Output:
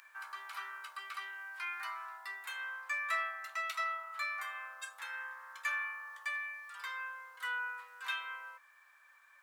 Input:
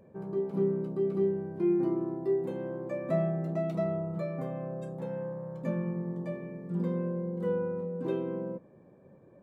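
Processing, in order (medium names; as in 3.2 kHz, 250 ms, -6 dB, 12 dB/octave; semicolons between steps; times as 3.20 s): steep high-pass 1.3 kHz 36 dB/octave; in parallel at 0 dB: gain riding within 5 dB 2 s; on the sum: trim +10 dB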